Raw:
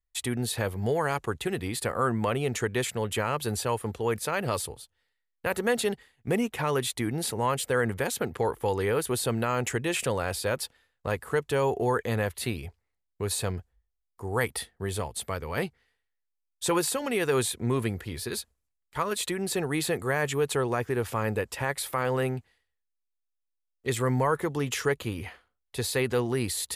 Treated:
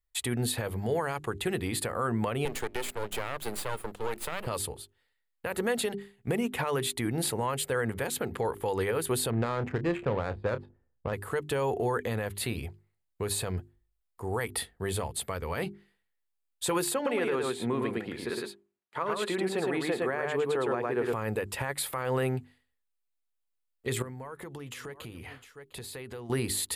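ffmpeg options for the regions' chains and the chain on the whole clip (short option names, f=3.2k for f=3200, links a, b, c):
-filter_complex "[0:a]asettb=1/sr,asplit=3[a][b][c];[a]atrim=end=2.454[d];[b]atrim=start=2.45:end=4.47,asetpts=PTS-STARTPTS,afade=t=in:d=0.004:c=qsin,afade=t=out:st=2.016:d=0.004:c=qsin,highpass=f=230:w=0.5412,highpass=f=230:w=1.3066,aeval=exprs='max(val(0),0)':c=same[e];[c]atrim=start=4.466[f];[d][e]acrossfade=d=0.004:c1=hsin:c2=qsin[g];[g][f]acrossfade=d=0.004:c1=qsin:c2=hsin,asettb=1/sr,asplit=3[h][i][j];[h]atrim=end=9.304[k];[i]atrim=start=9.3:end=11.13,asetpts=PTS-STARTPTS,afade=t=in:d=0.004:c=qsin,afade=t=out:st=1.826:d=0.004:c=qsin,bass=f=250:g=3,treble=f=4k:g=-10,adynamicsmooth=sensitivity=2:basefreq=540,asplit=2[l][m];[m]adelay=29,volume=-12.5dB[n];[l][n]amix=inputs=2:normalize=0,atrim=end_sample=80703[o];[j]atrim=start=11.126[p];[k][o]acrossfade=d=0.004:c1=hsin:c2=qsin[q];[q][p]acrossfade=d=0.004:c1=qsin:c2=hsin,asettb=1/sr,asplit=3[r][s][t];[r]atrim=end=16.944[u];[s]atrim=start=16.94:end=21.13,asetpts=PTS-STARTPTS,afade=t=in:d=0.004:c=qsin,afade=t=out:st=4.186:d=0.004:c=qsin,highpass=220,aemphasis=mode=reproduction:type=75fm,aecho=1:1:110:0.708,atrim=end_sample=184779[v];[t]atrim=start=21.126[w];[u][v]acrossfade=d=0.004:c1=hsin:c2=qsin[x];[x][w]acrossfade=d=0.004:c1=qsin:c2=hsin,asettb=1/sr,asplit=3[y][z][aa];[y]atrim=end=24.024[ab];[z]atrim=start=24.02:end=26.3,asetpts=PTS-STARTPTS,afade=t=in:d=0.004:c=qsin,afade=t=out:st=2.276:d=0.004:c=qsin,aecho=1:1:704:0.0631,atrim=end_sample=100548,acompressor=threshold=-39dB:ratio=10:attack=3.2:release=140:knee=1:detection=peak[ac];[aa]atrim=start=26.296[ad];[ab][ac]acrossfade=d=0.004:c1=hsin:c2=qsin[ae];[ae][ad]acrossfade=d=0.004:c1=qsin:c2=hsin,equalizer=f=5.8k:w=3.2:g=-6.5,bandreject=f=50:t=h:w=6,bandreject=f=100:t=h:w=6,bandreject=f=150:t=h:w=6,bandreject=f=200:t=h:w=6,bandreject=f=250:t=h:w=6,bandreject=f=300:t=h:w=6,bandreject=f=350:t=h:w=6,bandreject=f=400:t=h:w=6,alimiter=limit=-21.5dB:level=0:latency=1:release=102,volume=1.5dB"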